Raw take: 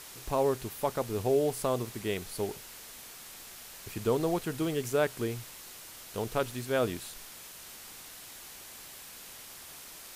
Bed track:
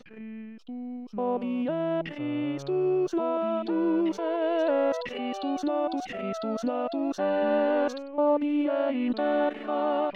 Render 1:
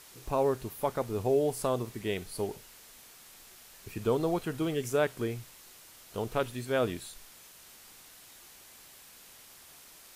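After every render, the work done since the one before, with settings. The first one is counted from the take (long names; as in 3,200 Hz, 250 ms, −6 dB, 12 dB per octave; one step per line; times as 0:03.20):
noise reduction from a noise print 6 dB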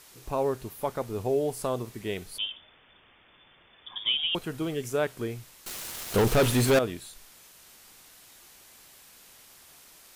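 0:02.38–0:04.35: voice inversion scrambler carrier 3,500 Hz
0:05.66–0:06.79: leveller curve on the samples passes 5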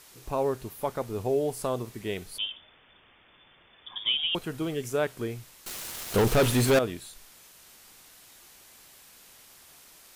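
no processing that can be heard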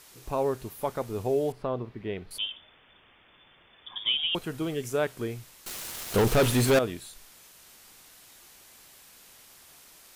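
0:01.52–0:02.31: high-frequency loss of the air 360 metres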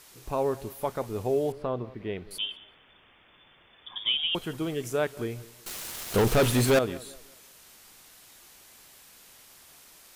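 tape delay 186 ms, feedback 35%, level −18.5 dB, low-pass 2,700 Hz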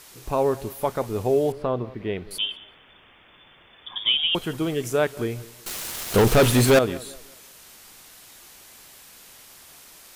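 level +5.5 dB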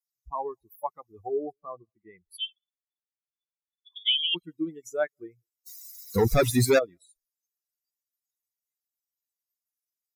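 spectral dynamics exaggerated over time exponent 3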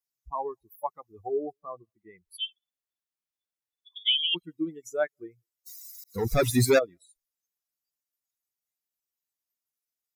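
0:06.04–0:06.64: fade in equal-power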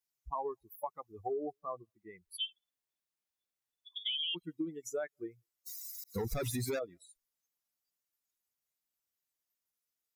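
brickwall limiter −23.5 dBFS, peak gain reduction 11.5 dB
downward compressor, threshold −33 dBFS, peak gain reduction 6.5 dB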